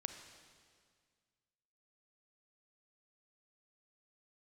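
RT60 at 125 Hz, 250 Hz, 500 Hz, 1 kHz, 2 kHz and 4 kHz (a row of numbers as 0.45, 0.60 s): 2.3, 2.1, 1.9, 1.9, 1.8, 1.8 s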